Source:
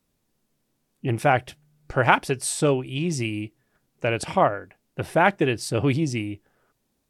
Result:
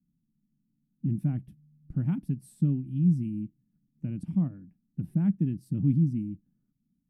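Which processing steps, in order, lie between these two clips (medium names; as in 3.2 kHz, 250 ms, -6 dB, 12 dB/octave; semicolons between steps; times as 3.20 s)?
FFT filter 110 Hz 0 dB, 180 Hz +13 dB, 280 Hz +3 dB, 440 Hz -26 dB, 1 kHz -29 dB, 7 kHz -28 dB, 12 kHz -13 dB; trim -6 dB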